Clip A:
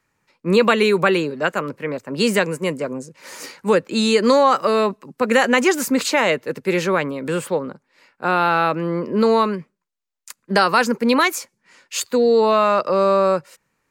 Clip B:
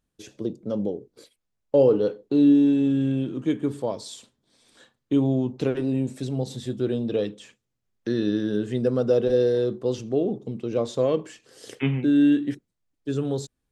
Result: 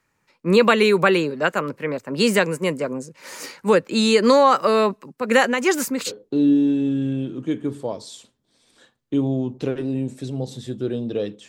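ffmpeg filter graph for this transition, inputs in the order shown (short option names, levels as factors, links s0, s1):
-filter_complex "[0:a]asplit=3[s0][s1][s2];[s0]afade=t=out:st=5.07:d=0.02[s3];[s1]tremolo=f=2.6:d=0.55,afade=t=in:st=5.07:d=0.02,afade=t=out:st=6.12:d=0.02[s4];[s2]afade=t=in:st=6.12:d=0.02[s5];[s3][s4][s5]amix=inputs=3:normalize=0,apad=whole_dur=11.48,atrim=end=11.48,atrim=end=6.12,asetpts=PTS-STARTPTS[s6];[1:a]atrim=start=2.05:end=7.47,asetpts=PTS-STARTPTS[s7];[s6][s7]acrossfade=d=0.06:c1=tri:c2=tri"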